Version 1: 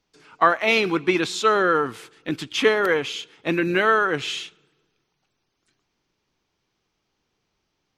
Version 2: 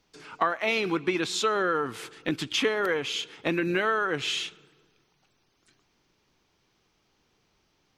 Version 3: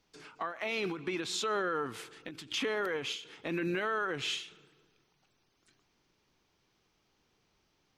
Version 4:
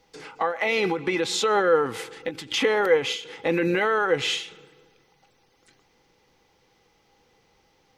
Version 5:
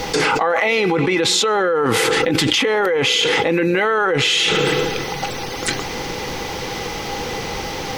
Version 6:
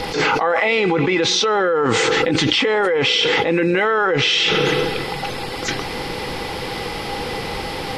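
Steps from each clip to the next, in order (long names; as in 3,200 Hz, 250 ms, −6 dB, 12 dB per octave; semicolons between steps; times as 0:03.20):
downward compressor 3 to 1, threshold −32 dBFS, peak gain reduction 15.5 dB; level +5 dB
brickwall limiter −20.5 dBFS, peak gain reduction 10 dB; every ending faded ahead of time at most 120 dB per second; level −4 dB
hollow resonant body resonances 500/810/2,000 Hz, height 14 dB, ringing for 75 ms; level +8.5 dB
envelope flattener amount 100%; level −2.5 dB
hearing-aid frequency compression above 3,900 Hz 1.5 to 1; level that may rise only so fast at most 130 dB per second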